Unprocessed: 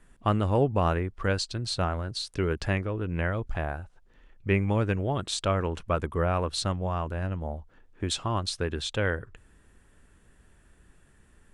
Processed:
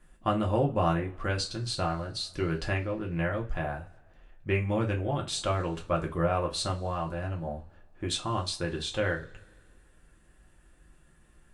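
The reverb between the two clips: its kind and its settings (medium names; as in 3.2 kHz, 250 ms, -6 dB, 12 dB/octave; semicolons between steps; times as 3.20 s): two-slope reverb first 0.22 s, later 1.9 s, from -28 dB, DRR -0.5 dB; trim -4.5 dB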